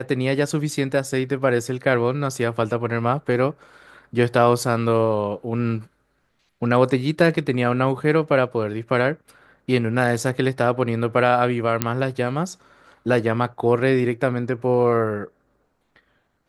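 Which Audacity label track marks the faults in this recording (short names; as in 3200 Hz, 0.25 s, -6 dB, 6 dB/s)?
11.820000	11.820000	pop -3 dBFS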